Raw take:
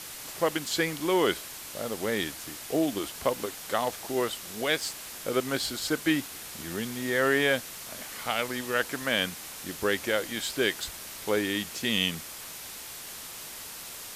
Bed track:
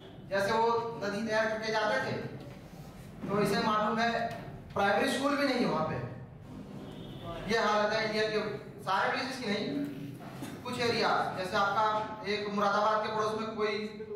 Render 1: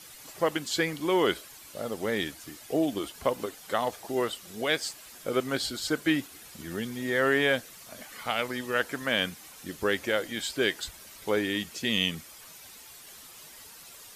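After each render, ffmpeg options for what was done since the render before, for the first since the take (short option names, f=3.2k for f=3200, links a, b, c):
-af "afftdn=nr=10:nf=-42"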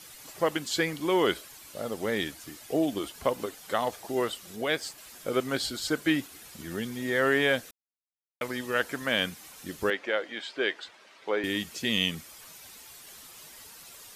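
-filter_complex "[0:a]asettb=1/sr,asplit=3[a][b][c];[a]atrim=end=4.564[d];[b]atrim=start=4.56:end=4.98,asetpts=PTS-STARTPTS,afade=t=in:d=0.004:c=qsin,afade=t=out:st=0.416:d=0.004:c=qsin,equalizer=f=6.2k:t=o:w=2.7:g=-4[e];[c]atrim=start=4.976[f];[d][e]acrossfade=d=0.004:c1=hsin:c2=qsin[g];[g][f]acrossfade=d=0.004:c1=qsin:c2=hsin,asettb=1/sr,asplit=3[h][i][j];[h]atrim=end=9.904[k];[i]atrim=start=9.9:end=11.44,asetpts=PTS-STARTPTS,afade=t=in:d=0.004:c=qsin,afade=t=out:st=1.536:d=0.004:c=qsin,highpass=370,lowpass=3.1k[l];[j]atrim=start=11.436[m];[k][l]acrossfade=d=0.004:c1=hsin:c2=qsin[n];[n][m]acrossfade=d=0.004:c1=qsin:c2=hsin,asplit=3[o][p][q];[o]atrim=end=7.71,asetpts=PTS-STARTPTS,afade=t=out:st=7.706:d=0.004:c=hsin[r];[p]atrim=start=7.71:end=8.41,asetpts=PTS-STARTPTS,volume=0[s];[q]atrim=start=8.41,asetpts=PTS-STARTPTS,afade=t=in:d=0.004:c=hsin[t];[r][s][t]concat=n=3:v=0:a=1"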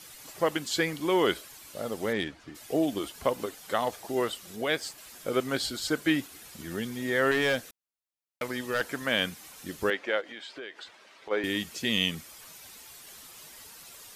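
-filter_complex "[0:a]asplit=3[a][b][c];[a]afade=t=out:st=2.12:d=0.02[d];[b]adynamicsmooth=sensitivity=2.5:basefreq=3.1k,afade=t=in:st=2.12:d=0.02,afade=t=out:st=2.54:d=0.02[e];[c]afade=t=in:st=2.54:d=0.02[f];[d][e][f]amix=inputs=3:normalize=0,asettb=1/sr,asplit=3[g][h][i];[g]atrim=end=7.314[j];[h]atrim=start=7.31:end=8.81,asetpts=PTS-STARTPTS,afade=t=in:d=0.004:c=qsin,afade=t=out:st=1.496:d=0.004:c=qsin,asoftclip=type=hard:threshold=-21dB[k];[i]atrim=start=8.806[l];[j][k]acrossfade=d=0.004:c1=hsin:c2=qsin[m];[m][l]acrossfade=d=0.004:c1=qsin:c2=hsin,asplit=3[n][o][p];[n]afade=t=out:st=10.2:d=0.02[q];[o]acompressor=threshold=-39dB:ratio=4:attack=3.2:release=140:knee=1:detection=peak,afade=t=in:st=10.2:d=0.02,afade=t=out:st=11.3:d=0.02[r];[p]afade=t=in:st=11.3:d=0.02[s];[q][r][s]amix=inputs=3:normalize=0"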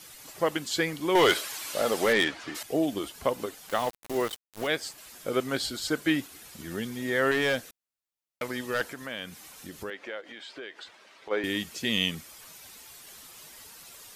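-filter_complex "[0:a]asettb=1/sr,asplit=3[a][b][c];[a]atrim=end=1.154[d];[b]atrim=start=1.15:end=2.63,asetpts=PTS-STARTPTS,afade=t=in:d=0.004:c=qsin,afade=t=out:st=1.476:d=0.004:c=qsin,asplit=2[e][f];[f]highpass=f=720:p=1,volume=19dB,asoftclip=type=tanh:threshold=-12dB[g];[e][g]amix=inputs=2:normalize=0,lowpass=f=7.8k:p=1,volume=-6dB[h];[c]atrim=start=2.626[i];[d][h]acrossfade=d=0.004:c1=hsin:c2=qsin[j];[j][i]acrossfade=d=0.004:c1=qsin:c2=hsin,asettb=1/sr,asplit=3[k][l][m];[k]atrim=end=3.694[n];[l]atrim=start=3.69:end=4.67,asetpts=PTS-STARTPTS,afade=t=in:d=0.004:c=qsin,afade=t=out:st=0.976:d=0.004:c=qsin,aeval=exprs='val(0)*gte(abs(val(0)),0.0188)':c=same[o];[m]atrim=start=4.666[p];[n][o]acrossfade=d=0.004:c1=hsin:c2=qsin[q];[q][p]acrossfade=d=0.004:c1=qsin:c2=hsin,asettb=1/sr,asplit=3[r][s][t];[r]atrim=end=8.884[u];[s]atrim=start=8.88:end=10.47,asetpts=PTS-STARTPTS,afade=t=in:d=0.004:c=qsin,afade=t=out:st=1.586:d=0.004:c=qsin,acompressor=threshold=-40dB:ratio=2:attack=3.2:release=140:knee=1:detection=peak[v];[t]atrim=start=10.466[w];[u][v]acrossfade=d=0.004:c1=hsin:c2=qsin[x];[x][w]acrossfade=d=0.004:c1=qsin:c2=hsin"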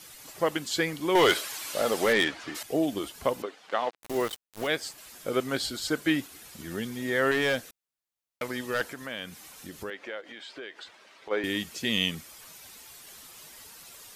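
-filter_complex "[0:a]asettb=1/sr,asplit=3[a][b][c];[a]atrim=end=3.424[d];[b]atrim=start=3.42:end=3.98,asetpts=PTS-STARTPTS,afade=t=in:d=0.004:c=qsin,afade=t=out:st=0.556:d=0.004:c=qsin,highpass=310,lowpass=3.6k[e];[c]atrim=start=3.976[f];[d][e]acrossfade=d=0.004:c1=hsin:c2=qsin[g];[g][f]acrossfade=d=0.004:c1=qsin:c2=hsin"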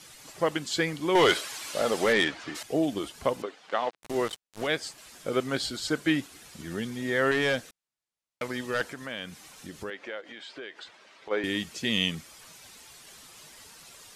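-af "lowpass=9.8k,equalizer=f=150:t=o:w=0.77:g=2.5"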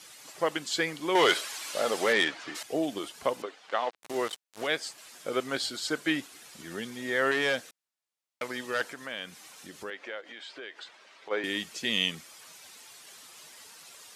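-af "highpass=f=400:p=1"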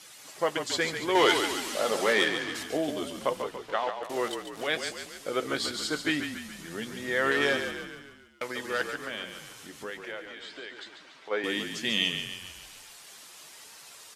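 -filter_complex "[0:a]asplit=2[a][b];[b]adelay=14,volume=-11.5dB[c];[a][c]amix=inputs=2:normalize=0,asplit=7[d][e][f][g][h][i][j];[e]adelay=142,afreqshift=-34,volume=-7.5dB[k];[f]adelay=284,afreqshift=-68,volume=-13dB[l];[g]adelay=426,afreqshift=-102,volume=-18.5dB[m];[h]adelay=568,afreqshift=-136,volume=-24dB[n];[i]adelay=710,afreqshift=-170,volume=-29.6dB[o];[j]adelay=852,afreqshift=-204,volume=-35.1dB[p];[d][k][l][m][n][o][p]amix=inputs=7:normalize=0"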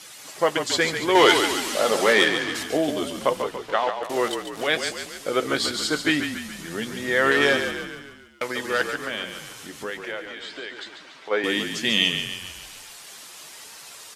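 -af "volume=6.5dB"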